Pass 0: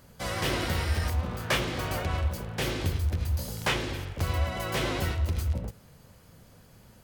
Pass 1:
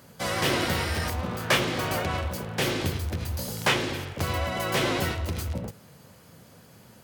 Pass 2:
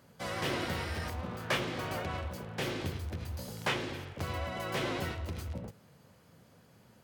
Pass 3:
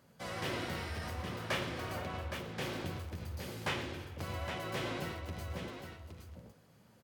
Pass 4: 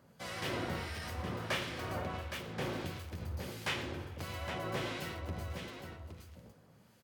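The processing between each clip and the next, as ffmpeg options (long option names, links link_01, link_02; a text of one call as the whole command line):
ffmpeg -i in.wav -af "highpass=120,volume=4.5dB" out.wav
ffmpeg -i in.wav -af "highshelf=frequency=5200:gain=-6.5,volume=-8dB" out.wav
ffmpeg -i in.wav -af "aecho=1:1:54|117|816:0.282|0.2|0.422,volume=-4.5dB" out.wav
ffmpeg -i in.wav -filter_complex "[0:a]acrossover=split=1600[link_01][link_02];[link_01]aeval=exprs='val(0)*(1-0.5/2+0.5/2*cos(2*PI*1.5*n/s))':channel_layout=same[link_03];[link_02]aeval=exprs='val(0)*(1-0.5/2-0.5/2*cos(2*PI*1.5*n/s))':channel_layout=same[link_04];[link_03][link_04]amix=inputs=2:normalize=0,volume=2.5dB" out.wav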